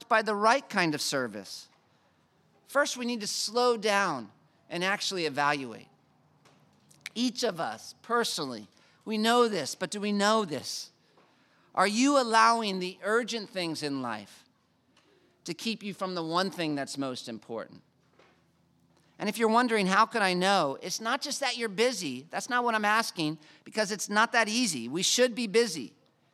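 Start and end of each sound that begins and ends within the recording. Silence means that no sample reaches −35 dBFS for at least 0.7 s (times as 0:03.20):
0:02.72–0:05.81
0:07.06–0:10.83
0:11.75–0:14.23
0:15.46–0:17.63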